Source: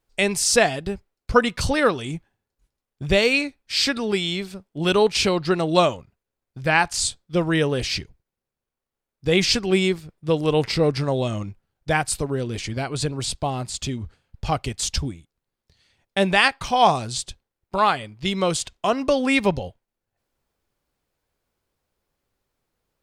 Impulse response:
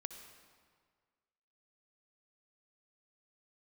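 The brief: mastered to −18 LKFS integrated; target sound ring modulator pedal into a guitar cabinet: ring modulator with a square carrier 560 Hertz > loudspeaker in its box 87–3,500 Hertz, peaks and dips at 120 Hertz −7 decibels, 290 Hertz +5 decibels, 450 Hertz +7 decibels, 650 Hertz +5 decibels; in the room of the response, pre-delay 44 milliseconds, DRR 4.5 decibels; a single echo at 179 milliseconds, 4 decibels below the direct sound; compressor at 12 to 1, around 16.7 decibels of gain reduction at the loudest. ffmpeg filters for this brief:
-filter_complex "[0:a]acompressor=threshold=-28dB:ratio=12,aecho=1:1:179:0.631,asplit=2[link_01][link_02];[1:a]atrim=start_sample=2205,adelay=44[link_03];[link_02][link_03]afir=irnorm=-1:irlink=0,volume=-1.5dB[link_04];[link_01][link_04]amix=inputs=2:normalize=0,aeval=exprs='val(0)*sgn(sin(2*PI*560*n/s))':channel_layout=same,highpass=87,equalizer=frequency=120:width_type=q:width=4:gain=-7,equalizer=frequency=290:width_type=q:width=4:gain=5,equalizer=frequency=450:width_type=q:width=4:gain=7,equalizer=frequency=650:width_type=q:width=4:gain=5,lowpass=frequency=3500:width=0.5412,lowpass=frequency=3500:width=1.3066,volume=12dB"

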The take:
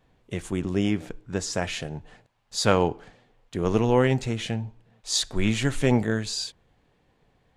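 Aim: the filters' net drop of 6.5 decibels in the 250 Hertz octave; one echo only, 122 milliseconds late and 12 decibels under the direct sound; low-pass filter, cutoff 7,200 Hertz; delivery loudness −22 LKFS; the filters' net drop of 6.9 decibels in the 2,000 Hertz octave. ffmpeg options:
ffmpeg -i in.wav -af "lowpass=7200,equalizer=frequency=250:width_type=o:gain=-8.5,equalizer=frequency=2000:width_type=o:gain=-9,aecho=1:1:122:0.251,volume=7dB" out.wav

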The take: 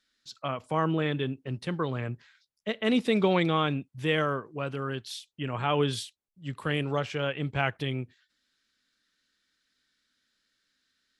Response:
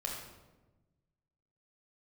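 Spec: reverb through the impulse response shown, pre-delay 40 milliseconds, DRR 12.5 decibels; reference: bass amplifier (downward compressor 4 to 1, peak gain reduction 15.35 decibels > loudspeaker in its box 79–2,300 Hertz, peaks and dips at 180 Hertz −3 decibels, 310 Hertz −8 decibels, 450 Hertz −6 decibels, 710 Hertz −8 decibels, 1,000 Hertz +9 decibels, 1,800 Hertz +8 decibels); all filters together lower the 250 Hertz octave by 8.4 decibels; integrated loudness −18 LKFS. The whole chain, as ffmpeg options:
-filter_complex "[0:a]equalizer=frequency=250:width_type=o:gain=-7,asplit=2[link_01][link_02];[1:a]atrim=start_sample=2205,adelay=40[link_03];[link_02][link_03]afir=irnorm=-1:irlink=0,volume=-14.5dB[link_04];[link_01][link_04]amix=inputs=2:normalize=0,acompressor=threshold=-40dB:ratio=4,highpass=frequency=79:width=0.5412,highpass=frequency=79:width=1.3066,equalizer=frequency=180:width_type=q:width=4:gain=-3,equalizer=frequency=310:width_type=q:width=4:gain=-8,equalizer=frequency=450:width_type=q:width=4:gain=-6,equalizer=frequency=710:width_type=q:width=4:gain=-8,equalizer=frequency=1000:width_type=q:width=4:gain=9,equalizer=frequency=1800:width_type=q:width=4:gain=8,lowpass=frequency=2300:width=0.5412,lowpass=frequency=2300:width=1.3066,volume=25dB"

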